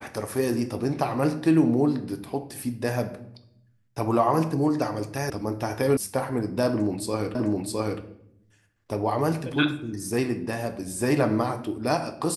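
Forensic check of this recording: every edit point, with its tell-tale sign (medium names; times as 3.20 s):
5.30 s: sound stops dead
5.97 s: sound stops dead
7.35 s: repeat of the last 0.66 s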